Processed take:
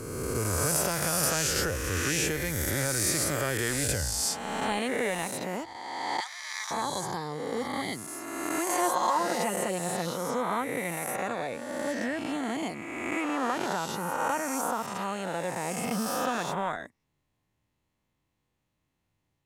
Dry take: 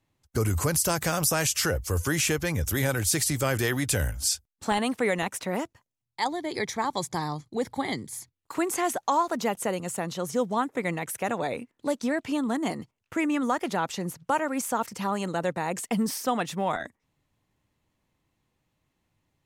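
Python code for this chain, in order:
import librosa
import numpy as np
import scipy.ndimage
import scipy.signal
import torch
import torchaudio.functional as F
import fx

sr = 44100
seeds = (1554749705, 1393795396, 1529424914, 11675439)

y = fx.spec_swells(x, sr, rise_s=1.92)
y = fx.highpass(y, sr, hz=1200.0, slope=24, at=(6.2, 6.71))
y = fx.comb(y, sr, ms=5.6, depth=0.65, at=(8.68, 10.11))
y = y * 10.0 ** (-7.0 / 20.0)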